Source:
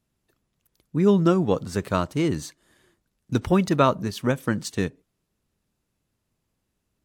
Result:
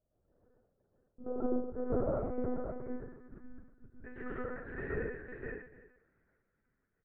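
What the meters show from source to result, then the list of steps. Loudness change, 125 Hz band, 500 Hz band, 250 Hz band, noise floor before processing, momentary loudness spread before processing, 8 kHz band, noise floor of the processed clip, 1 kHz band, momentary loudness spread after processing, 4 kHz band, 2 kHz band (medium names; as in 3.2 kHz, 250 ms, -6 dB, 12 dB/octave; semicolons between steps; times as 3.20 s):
-15.5 dB, -19.5 dB, -12.5 dB, -16.5 dB, -78 dBFS, 11 LU, under -40 dB, -82 dBFS, -18.5 dB, 20 LU, under -40 dB, -11.0 dB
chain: bass shelf 180 Hz -3 dB; compression 2:1, threshold -44 dBFS, peak gain reduction 16.5 dB; trance gate "xx...x.xxxxx" 63 bpm -60 dB; static phaser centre 890 Hz, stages 6; low-pass sweep 740 Hz -> 1.9 kHz, 1.97–3.60 s; distance through air 420 m; doubling 35 ms -6 dB; on a send: multi-tap echo 45/109/361/515/823 ms -3.5/-5/-18.5/-3/-20 dB; on the sum: plate-style reverb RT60 0.77 s, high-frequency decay 0.8×, pre-delay 110 ms, DRR -5 dB; monotone LPC vocoder at 8 kHz 250 Hz; trim -3.5 dB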